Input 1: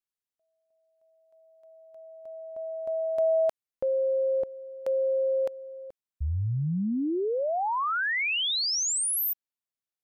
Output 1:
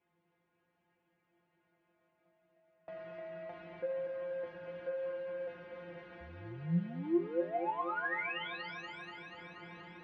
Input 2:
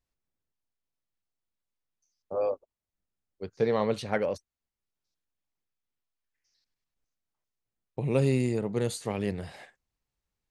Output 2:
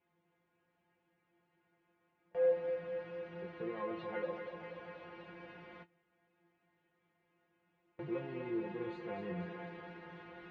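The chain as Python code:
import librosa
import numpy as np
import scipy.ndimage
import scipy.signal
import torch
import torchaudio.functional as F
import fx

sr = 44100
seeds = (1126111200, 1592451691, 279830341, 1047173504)

y = fx.rider(x, sr, range_db=10, speed_s=0.5)
y = fx.dmg_noise_colour(y, sr, seeds[0], colour='pink', level_db=-43.0)
y = 10.0 ** (-24.0 / 20.0) * np.tanh(y / 10.0 ** (-24.0 / 20.0))
y = fx.stiff_resonator(y, sr, f0_hz=170.0, decay_s=0.29, stiffness=0.002)
y = fx.echo_thinned(y, sr, ms=240, feedback_pct=74, hz=240.0, wet_db=-7)
y = fx.gate_hold(y, sr, open_db=-40.0, close_db=-51.0, hold_ms=95.0, range_db=-25, attack_ms=0.34, release_ms=54.0)
y = fx.cabinet(y, sr, low_hz=110.0, low_slope=12, high_hz=2400.0, hz=(140.0, 370.0, 600.0, 1200.0), db=(-4, 3, -4, -4))
y = F.gain(torch.from_numpy(y), 5.5).numpy()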